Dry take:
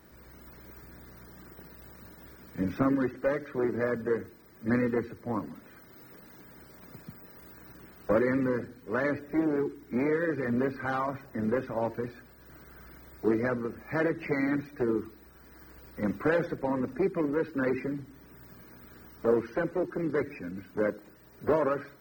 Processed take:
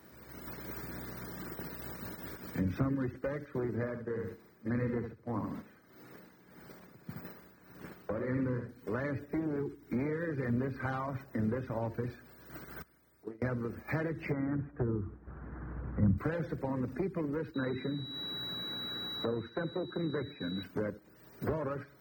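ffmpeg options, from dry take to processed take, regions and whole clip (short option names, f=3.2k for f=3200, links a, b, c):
-filter_complex "[0:a]asettb=1/sr,asplit=3[a][b][c];[a]atrim=end=3.754[d];[b]atrim=start=3.75:end=8.69,asetpts=PTS-STARTPTS,afade=t=in:d=0.004:c=qsin,afade=t=out:st=4.936:d=0.004:c=qsin,highshelf=f=5.1k:g=-6,aecho=1:1:71|142|213:0.447|0.0983|0.0216,atrim=end_sample=217854,tremolo=f=1.7:d=0.66[e];[c]atrim=start=8.686[f];[d][e]acrossfade=d=0.004:c1=hsin:c2=qsin[g];[g][f]acrossfade=d=0.004:c1=qsin:c2=hsin,asettb=1/sr,asplit=3[h][i][j];[h]atrim=end=12.824[k];[i]atrim=start=12.82:end=13.42,asetpts=PTS-STARTPTS,afade=t=in:d=0.004:c=qsin,afade=t=out:st=0.596:d=0.004:c=qsin,equalizer=f=10k:t=o:w=0.64:g=7,acompressor=threshold=-40dB:ratio=4:attack=3.2:release=140:knee=1:detection=peak,agate=range=-16dB:threshold=-39dB:ratio=16:release=100:detection=peak[l];[j]atrim=start=13.416[m];[k][l]acrossfade=d=0.004:c1=hsin:c2=qsin[n];[n][m]acrossfade=d=0.004:c1=qsin:c2=hsin,asettb=1/sr,asplit=3[o][p][q];[o]atrim=end=14.324[r];[p]atrim=start=14.32:end=16.18,asetpts=PTS-STARTPTS,afade=t=in:d=0.004:c=qsin,afade=t=out:st=1.856:d=0.004:c=qsin,lowpass=f=1.5k:w=0.5412,lowpass=f=1.5k:w=1.3066,asubboost=boost=8:cutoff=180[s];[q]atrim=start=16.176[t];[r][s]acrossfade=d=0.004:c1=hsin:c2=qsin[u];[u][t]acrossfade=d=0.004:c1=qsin:c2=hsin,asettb=1/sr,asplit=3[v][w][x];[v]atrim=end=17.544[y];[w]atrim=start=17.54:end=20.63,asetpts=PTS-STARTPTS,afade=t=in:d=0.004:c=qsin,afade=t=out:st=3.086:d=0.004:c=qsin,highpass=100,aeval=exprs='val(0)+0.0178*sin(2*PI*3900*n/s)':c=same,highshelf=f=2.3k:t=q:w=1.5:g=-7.5[z];[x]atrim=start=20.626[aa];[y][z]acrossfade=d=0.004:c1=hsin:c2=qsin[ab];[ab][aa]acrossfade=d=0.004:c1=qsin:c2=hsin,acrossover=split=130[ac][ad];[ad]acompressor=threshold=-44dB:ratio=5[ae];[ac][ae]amix=inputs=2:normalize=0,agate=range=-8dB:threshold=-50dB:ratio=16:detection=peak,highpass=81,volume=8dB"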